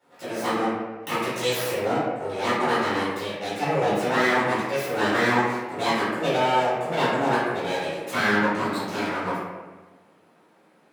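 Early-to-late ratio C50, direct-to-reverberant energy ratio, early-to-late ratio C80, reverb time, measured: −1.5 dB, −13.0 dB, 1.5 dB, 1.3 s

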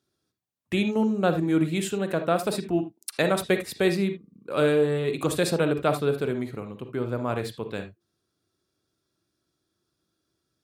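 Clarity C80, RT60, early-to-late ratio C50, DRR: 18.5 dB, non-exponential decay, 9.0 dB, 7.5 dB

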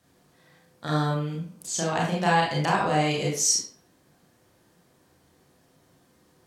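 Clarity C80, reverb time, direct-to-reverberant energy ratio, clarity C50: 7.0 dB, 0.50 s, −3.5 dB, 2.5 dB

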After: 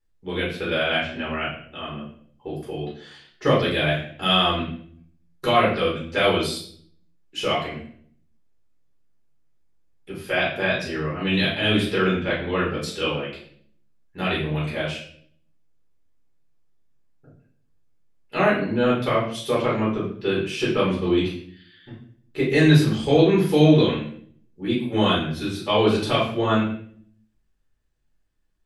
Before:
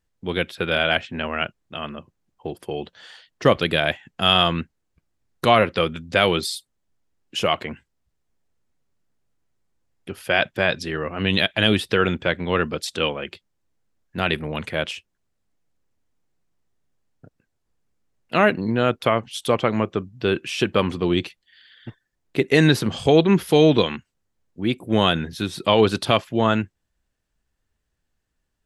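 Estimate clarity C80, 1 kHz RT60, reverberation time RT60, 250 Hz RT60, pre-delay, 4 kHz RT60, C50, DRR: 9.0 dB, 0.50 s, 0.60 s, 0.85 s, 5 ms, 0.50 s, 4.0 dB, −7.0 dB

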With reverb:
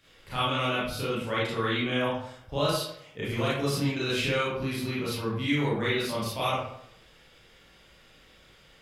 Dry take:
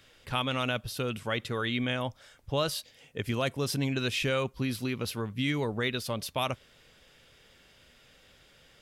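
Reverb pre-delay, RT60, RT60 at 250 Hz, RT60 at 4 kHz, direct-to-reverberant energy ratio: 28 ms, 0.70 s, 0.70 s, 0.45 s, −9.5 dB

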